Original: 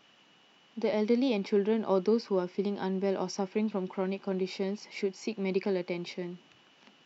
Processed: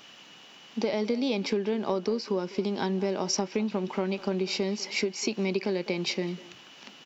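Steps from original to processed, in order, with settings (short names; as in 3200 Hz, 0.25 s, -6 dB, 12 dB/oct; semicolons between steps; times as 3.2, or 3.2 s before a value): compressor 6:1, threshold -33 dBFS, peak gain reduction 11.5 dB; high shelf 3500 Hz +9 dB; speakerphone echo 0.2 s, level -17 dB; gain +8 dB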